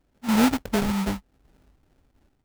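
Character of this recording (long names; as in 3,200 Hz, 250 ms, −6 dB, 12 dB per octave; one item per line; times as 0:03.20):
phaser sweep stages 6, 3.2 Hz, lowest notch 460–1,000 Hz
aliases and images of a low sample rate 1,100 Hz, jitter 20%
sample-and-hold tremolo 3.5 Hz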